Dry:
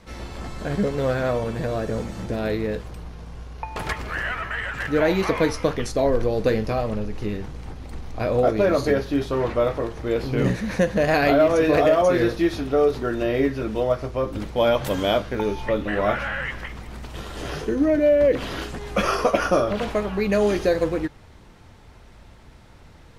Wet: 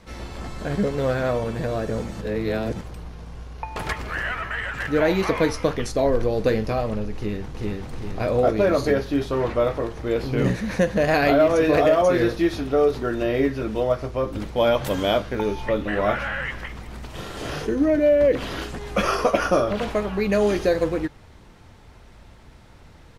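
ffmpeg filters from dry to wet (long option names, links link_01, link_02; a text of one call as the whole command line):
ffmpeg -i in.wav -filter_complex "[0:a]asplit=2[link_01][link_02];[link_02]afade=type=in:start_time=7.15:duration=0.01,afade=type=out:start_time=7.92:duration=0.01,aecho=0:1:390|780|1170|1560|1950|2340:0.891251|0.401063|0.180478|0.0812152|0.0365469|0.0164461[link_03];[link_01][link_03]amix=inputs=2:normalize=0,asettb=1/sr,asplit=3[link_04][link_05][link_06];[link_04]atrim=end=17.074[link_07];[link_05]atrim=start=17.07:end=17.67,asetpts=PTS-STARTPTS,afade=type=in:duration=0.004:curve=qsin,afade=type=out:start_time=0.596:duration=0.004:curve=qsin,asplit=2[link_08][link_09];[link_09]adelay=41,volume=-3.5dB[link_10];[link_08][link_10]amix=inputs=2:normalize=0,atrim=end_sample=26460[link_11];[link_06]atrim=start=17.666[link_12];[link_07][link_11]acrossfade=duration=0.004:curve1=hsin:curve2=qsin[link_13];[link_13][link_12]acrossfade=duration=0.004:curve1=qsin:curve2=hsin,asplit=3[link_14][link_15][link_16];[link_14]atrim=end=2.212[link_17];[link_15]atrim=start=2.208:end=2.812,asetpts=PTS-STARTPTS,areverse[link_18];[link_16]atrim=start=2.808[link_19];[link_17][link_18]acrossfade=duration=0.004:curve1=hsin:curve2=hsin[link_20];[link_20][link_19]acrossfade=duration=0.004:curve1=hsin:curve2=hsin" out.wav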